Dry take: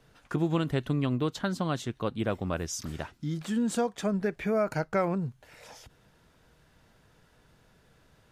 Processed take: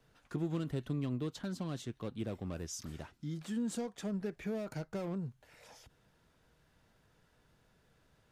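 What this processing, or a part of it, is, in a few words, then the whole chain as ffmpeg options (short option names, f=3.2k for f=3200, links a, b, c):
one-band saturation: -filter_complex "[0:a]acrossover=split=470|3800[a][b][c];[b]asoftclip=type=tanh:threshold=-39.5dB[d];[a][d][c]amix=inputs=3:normalize=0,volume=-7.5dB"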